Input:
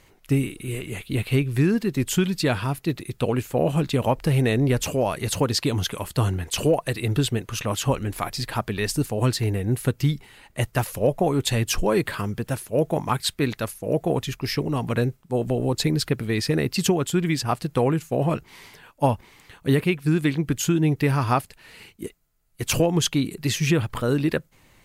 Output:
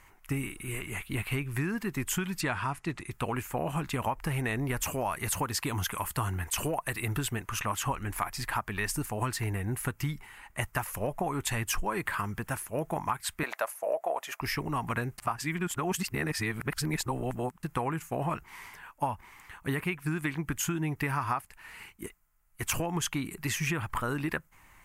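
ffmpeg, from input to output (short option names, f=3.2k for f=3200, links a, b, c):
-filter_complex "[0:a]asettb=1/sr,asplit=3[a][b][c];[a]atrim=end=2.414[d];[b]atrim=start=2.41:end=3.11,asetpts=PTS-STARTPTS,afade=t=in:d=0.004:c=qsin,afade=t=out:st=0.696:d=0.004:c=qsin,lowpass=f=9.3k:w=0.5412,lowpass=f=9.3k:w=1.3066[e];[c]atrim=start=3.106[f];[d][e]acrossfade=d=0.004:c1=hsin:c2=qsin[g];[g][f]acrossfade=d=0.004:c1=qsin:c2=hsin,asettb=1/sr,asplit=3[h][i][j];[h]atrim=end=4.574[k];[i]atrim=start=4.57:end=7.36,asetpts=PTS-STARTPTS,afade=t=in:d=0.004:c=qsin,afade=t=out:st=2.786:d=0.004:c=qsin,highshelf=f=11k:g=7[l];[j]atrim=start=7.356[m];[k][l]acrossfade=d=0.004:c1=hsin:c2=qsin[n];[n][m]acrossfade=d=0.004:c1=qsin:c2=hsin,asettb=1/sr,asplit=3[o][p][q];[o]atrim=end=13.434[r];[p]atrim=start=13.43:end=14.41,asetpts=PTS-STARTPTS,afade=t=in:d=0.004:c=qsin,afade=t=out:st=0.976:d=0.004:c=qsin,highpass=f=610:t=q:w=5[s];[q]atrim=start=14.406[t];[r][s]acrossfade=d=0.004:c1=hsin:c2=qsin[u];[u][t]acrossfade=d=0.004:c1=qsin:c2=hsin,asplit=3[v][w][x];[v]atrim=end=15.182[y];[w]atrim=start=15.178:end=17.632,asetpts=PTS-STARTPTS,areverse[z];[x]atrim=start=17.628[aa];[y][z]acrossfade=d=0.004:c1=hsin:c2=hsin[ab];[ab][aa]acrossfade=d=0.004:c1=hsin:c2=hsin,equalizer=f=125:t=o:w=1:g=-7,equalizer=f=250:t=o:w=1:g=-5,equalizer=f=500:t=o:w=1:g=-11,equalizer=f=1k:t=o:w=1:g=6,equalizer=f=2k:t=o:w=1:g=3,equalizer=f=4k:t=o:w=1:g=-11,acompressor=threshold=-27dB:ratio=6"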